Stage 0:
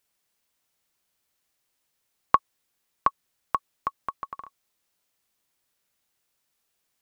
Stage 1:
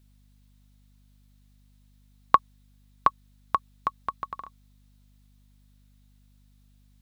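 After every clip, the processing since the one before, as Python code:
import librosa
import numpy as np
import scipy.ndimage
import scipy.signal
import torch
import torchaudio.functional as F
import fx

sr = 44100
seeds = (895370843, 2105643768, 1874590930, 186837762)

y = fx.peak_eq(x, sr, hz=3800.0, db=6.5, octaves=0.42)
y = fx.add_hum(y, sr, base_hz=50, snr_db=25)
y = y * librosa.db_to_amplitude(1.5)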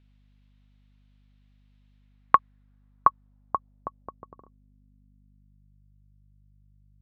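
y = fx.filter_sweep_lowpass(x, sr, from_hz=2800.0, to_hz=140.0, start_s=1.93, end_s=5.86, q=1.5)
y = y * librosa.db_to_amplitude(-1.5)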